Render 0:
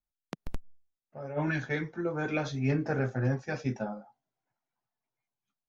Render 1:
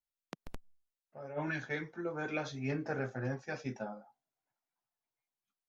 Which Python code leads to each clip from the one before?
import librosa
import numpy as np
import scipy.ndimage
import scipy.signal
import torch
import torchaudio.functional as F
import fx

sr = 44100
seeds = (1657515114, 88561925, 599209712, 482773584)

y = fx.low_shelf(x, sr, hz=230.0, db=-8.0)
y = y * 10.0 ** (-4.0 / 20.0)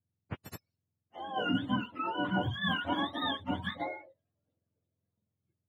y = fx.octave_mirror(x, sr, pivot_hz=670.0)
y = y * 10.0 ** (7.0 / 20.0)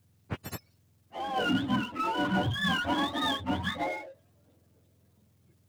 y = fx.power_curve(x, sr, exponent=0.7)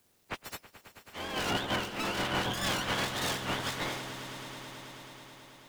y = fx.spec_clip(x, sr, under_db=25)
y = fx.echo_swell(y, sr, ms=108, loudest=5, wet_db=-16.5)
y = y * 10.0 ** (-3.5 / 20.0)